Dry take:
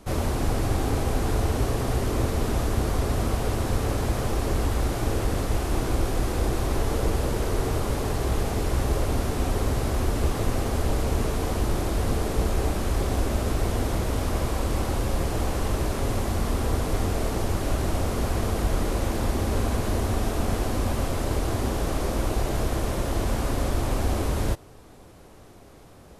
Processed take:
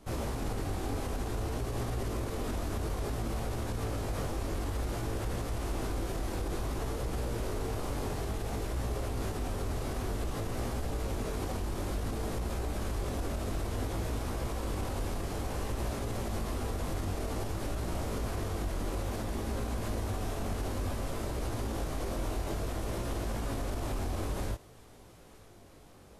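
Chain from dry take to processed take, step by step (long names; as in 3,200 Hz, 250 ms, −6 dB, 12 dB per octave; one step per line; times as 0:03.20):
chorus effect 0.56 Hz, delay 17 ms, depth 4.3 ms
brickwall limiter −22 dBFS, peak gain reduction 8.5 dB
delay with a high-pass on its return 920 ms, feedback 68%, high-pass 2,000 Hz, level −20 dB
level −3.5 dB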